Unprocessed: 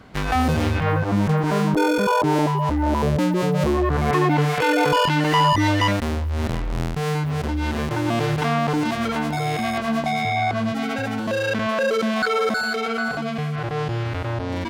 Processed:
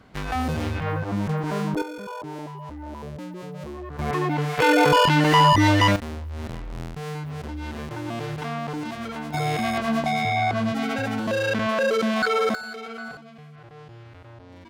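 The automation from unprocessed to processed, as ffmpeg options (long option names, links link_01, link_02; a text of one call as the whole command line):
ffmpeg -i in.wav -af "asetnsamples=nb_out_samples=441:pad=0,asendcmd='1.82 volume volume -16dB;3.99 volume volume -6dB;4.59 volume volume 1.5dB;5.96 volume volume -9dB;9.34 volume volume -1dB;12.55 volume volume -11.5dB;13.17 volume volume -19.5dB',volume=-6dB" out.wav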